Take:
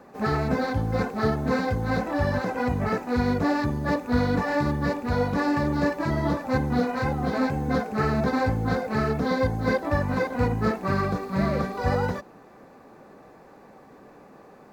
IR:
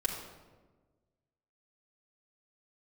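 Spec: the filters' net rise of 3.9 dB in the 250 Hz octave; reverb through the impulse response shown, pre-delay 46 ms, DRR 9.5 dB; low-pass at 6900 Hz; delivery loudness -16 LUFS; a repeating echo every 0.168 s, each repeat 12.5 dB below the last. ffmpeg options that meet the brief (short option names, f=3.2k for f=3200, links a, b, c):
-filter_complex "[0:a]lowpass=6.9k,equalizer=f=250:t=o:g=4.5,aecho=1:1:168|336|504:0.237|0.0569|0.0137,asplit=2[a][b];[1:a]atrim=start_sample=2205,adelay=46[c];[b][c]afir=irnorm=-1:irlink=0,volume=-14dB[d];[a][d]amix=inputs=2:normalize=0,volume=6.5dB"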